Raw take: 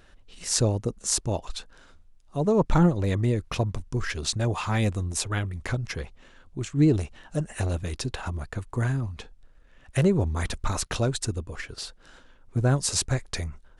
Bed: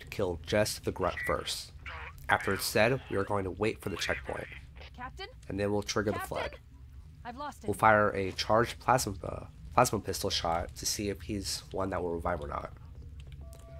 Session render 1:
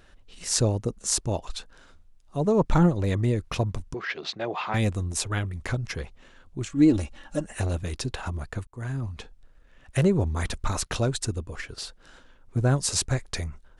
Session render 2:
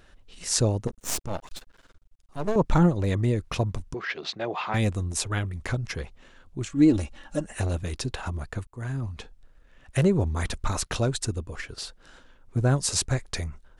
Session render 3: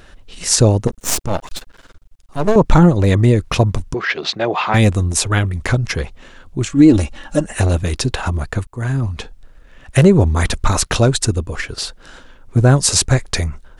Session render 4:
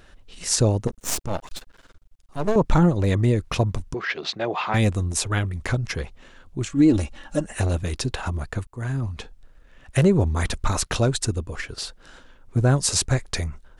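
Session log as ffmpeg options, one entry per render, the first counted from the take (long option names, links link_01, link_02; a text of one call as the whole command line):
ffmpeg -i in.wav -filter_complex "[0:a]asettb=1/sr,asplit=3[link_01][link_02][link_03];[link_01]atrim=end=3.944[link_04];[link_02]atrim=start=3.94:end=4.74,asetpts=PTS-STARTPTS,afade=type=in:duration=0.004:curve=qsin,afade=type=out:start_time=0.796:duration=0.004:curve=qsin,highpass=frequency=200:width=0.5412,highpass=frequency=200:width=1.3066,equalizer=frequency=240:width_type=q:width=4:gain=-10,equalizer=frequency=720:width_type=q:width=4:gain=4,equalizer=frequency=2100:width_type=q:width=4:gain=3,lowpass=frequency=4200:width=0.5412,lowpass=frequency=4200:width=1.3066[link_05];[link_03]atrim=start=4.736[link_06];[link_04][link_05]acrossfade=duration=0.004:curve1=hsin:curve2=qsin[link_07];[link_07][link_06]acrossfade=duration=0.004:curve1=qsin:curve2=hsin,asettb=1/sr,asplit=3[link_08][link_09][link_10];[link_08]atrim=end=6.694[link_11];[link_09]atrim=start=6.69:end=7.46,asetpts=PTS-STARTPTS,afade=type=in:duration=0.004:curve=qsin,afade=type=out:start_time=0.766:duration=0.004:curve=qsin,aecho=1:1:3.6:0.65,atrim=end_sample=33957[link_12];[link_10]atrim=start=7.456[link_13];[link_11][link_12]acrossfade=duration=0.004:curve1=hsin:curve2=qsin[link_14];[link_14][link_13]acrossfade=duration=0.004:curve1=qsin:curve2=hsin,asplit=2[link_15][link_16];[link_15]atrim=end=8.67,asetpts=PTS-STARTPTS,afade=type=out:start_time=8.666:duration=0.004:curve=hsin[link_17];[link_16]atrim=start=8.67,asetpts=PTS-STARTPTS,afade=type=in:duration=0.42[link_18];[link_17][link_18]concat=n=2:v=0:a=1" out.wav
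ffmpeg -i in.wav -filter_complex "[0:a]asettb=1/sr,asplit=3[link_01][link_02][link_03];[link_01]atrim=end=0.874[link_04];[link_02]atrim=start=0.87:end=2.56,asetpts=PTS-STARTPTS,afade=type=in:duration=0.004:curve=qsin,afade=type=out:start_time=1.686:duration=0.004:curve=qsin,aeval=exprs='max(val(0),0)':channel_layout=same[link_05];[link_03]atrim=start=2.556[link_06];[link_04][link_05]acrossfade=duration=0.004:curve1=hsin:curve2=qsin[link_07];[link_07][link_06]acrossfade=duration=0.004:curve1=qsin:curve2=hsin" out.wav
ffmpeg -i in.wav -af "alimiter=level_in=12dB:limit=-1dB:release=50:level=0:latency=1" out.wav
ffmpeg -i in.wav -af "volume=-7.5dB" out.wav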